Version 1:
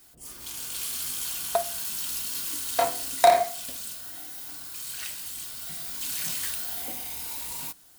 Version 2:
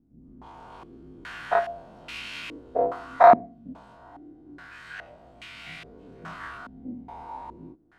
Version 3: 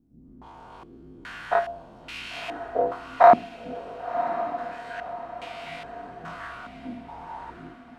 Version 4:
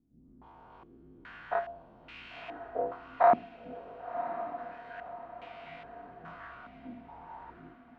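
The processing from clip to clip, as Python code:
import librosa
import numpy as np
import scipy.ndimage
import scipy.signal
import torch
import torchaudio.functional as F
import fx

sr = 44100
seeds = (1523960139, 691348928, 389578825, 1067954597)

y1 = fx.spec_dilate(x, sr, span_ms=60)
y1 = fx.filter_held_lowpass(y1, sr, hz=2.4, low_hz=240.0, high_hz=2400.0)
y1 = F.gain(torch.from_numpy(y1), -2.5).numpy()
y2 = fx.echo_diffused(y1, sr, ms=1066, feedback_pct=42, wet_db=-10)
y3 = scipy.signal.sosfilt(scipy.signal.butter(2, 2700.0, 'lowpass', fs=sr, output='sos'), y2)
y3 = F.gain(torch.from_numpy(y3), -8.5).numpy()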